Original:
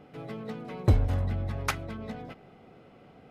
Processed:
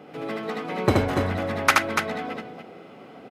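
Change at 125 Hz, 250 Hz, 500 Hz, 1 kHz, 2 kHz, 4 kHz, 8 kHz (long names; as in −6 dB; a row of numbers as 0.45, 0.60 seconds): −2.0, +8.5, +11.5, +13.5, +15.0, +12.5, +11.0 decibels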